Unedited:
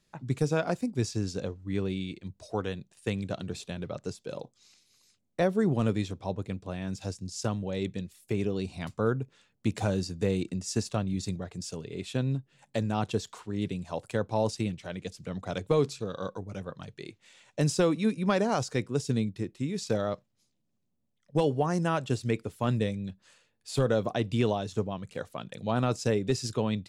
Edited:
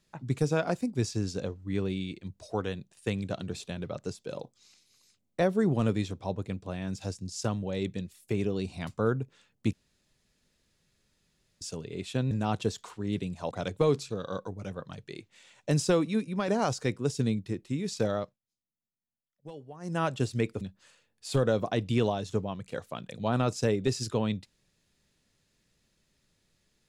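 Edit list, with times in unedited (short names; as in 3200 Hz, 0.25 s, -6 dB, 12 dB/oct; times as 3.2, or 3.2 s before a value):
9.73–11.61 room tone
12.31–12.8 cut
14–15.41 cut
17.83–18.38 fade out, to -6 dB
20.06–21.93 dip -19 dB, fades 0.23 s
22.51–23.04 cut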